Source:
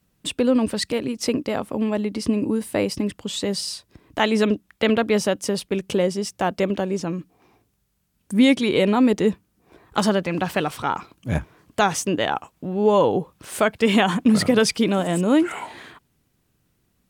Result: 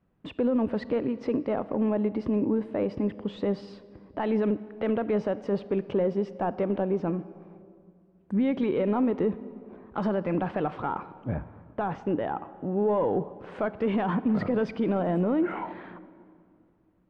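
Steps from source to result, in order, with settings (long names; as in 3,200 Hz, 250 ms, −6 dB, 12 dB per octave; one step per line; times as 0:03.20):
high-shelf EQ 5,000 Hz −7.5 dB
brickwall limiter −16 dBFS, peak gain reduction 9 dB
mid-hump overdrive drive 8 dB, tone 1,000 Hz, clips at −16 dBFS
head-to-tape spacing loss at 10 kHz 30 dB, from 0:11.28 at 10 kHz 44 dB, from 0:12.77 at 10 kHz 31 dB
convolution reverb RT60 2.4 s, pre-delay 30 ms, DRR 15.5 dB
level +2 dB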